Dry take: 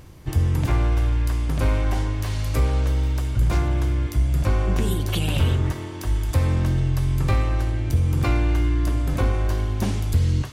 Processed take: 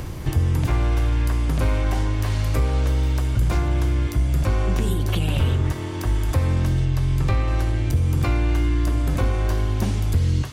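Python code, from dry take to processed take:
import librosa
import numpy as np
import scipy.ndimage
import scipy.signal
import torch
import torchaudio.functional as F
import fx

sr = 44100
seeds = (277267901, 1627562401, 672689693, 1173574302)

y = fx.high_shelf(x, sr, hz=7600.0, db=-11.0, at=(6.85, 7.48))
y = fx.band_squash(y, sr, depth_pct=70)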